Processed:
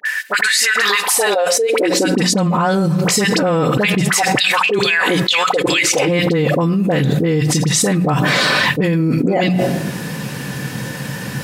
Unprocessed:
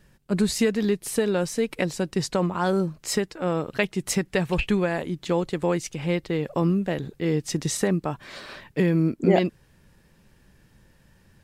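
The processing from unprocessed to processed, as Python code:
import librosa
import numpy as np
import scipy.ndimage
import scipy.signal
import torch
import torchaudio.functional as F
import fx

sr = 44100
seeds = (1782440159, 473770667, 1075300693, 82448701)

y = fx.low_shelf(x, sr, hz=190.0, db=-12.0)
y = fx.hum_notches(y, sr, base_hz=60, count=3)
y = y + 0.38 * np.pad(y, (int(4.0 * sr / 1000.0), 0))[:len(y)]
y = fx.filter_lfo_highpass(y, sr, shape='saw_down', hz=2.3, low_hz=300.0, high_hz=4500.0, q=7.1, at=(4.03, 6.07), fade=0.02)
y = fx.dispersion(y, sr, late='highs', ms=55.0, hz=1200.0)
y = fx.filter_sweep_highpass(y, sr, from_hz=1800.0, to_hz=130.0, start_s=0.55, end_s=2.68, q=5.6)
y = fx.room_shoebox(y, sr, seeds[0], volume_m3=2500.0, walls='furnished', distance_m=0.4)
y = fx.env_flatten(y, sr, amount_pct=100)
y = F.gain(torch.from_numpy(y), -6.0).numpy()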